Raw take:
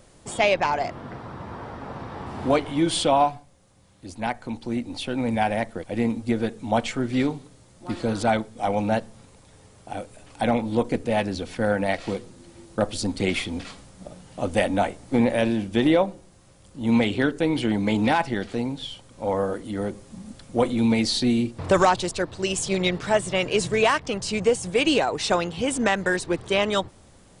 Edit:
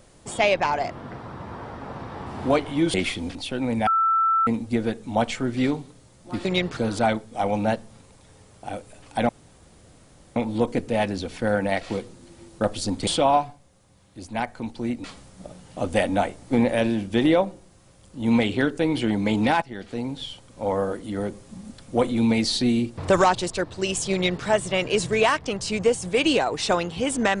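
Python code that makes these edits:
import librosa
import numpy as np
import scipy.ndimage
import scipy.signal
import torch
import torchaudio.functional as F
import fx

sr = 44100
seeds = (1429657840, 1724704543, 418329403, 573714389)

y = fx.edit(x, sr, fx.swap(start_s=2.94, length_s=1.97, other_s=13.24, other_length_s=0.41),
    fx.bleep(start_s=5.43, length_s=0.6, hz=1330.0, db=-17.0),
    fx.insert_room_tone(at_s=10.53, length_s=1.07),
    fx.fade_in_from(start_s=18.23, length_s=0.55, floor_db=-15.5),
    fx.duplicate(start_s=22.74, length_s=0.32, to_s=8.01), tone=tone)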